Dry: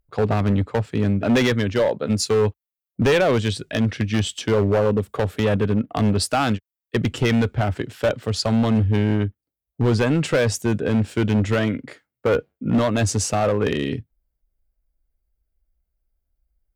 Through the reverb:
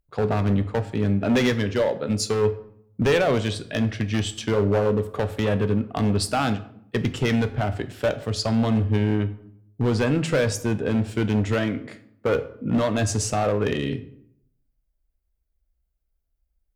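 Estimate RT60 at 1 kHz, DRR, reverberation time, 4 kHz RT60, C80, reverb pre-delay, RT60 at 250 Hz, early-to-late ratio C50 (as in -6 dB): 0.65 s, 9.5 dB, 0.70 s, 0.45 s, 17.0 dB, 10 ms, 0.85 s, 14.5 dB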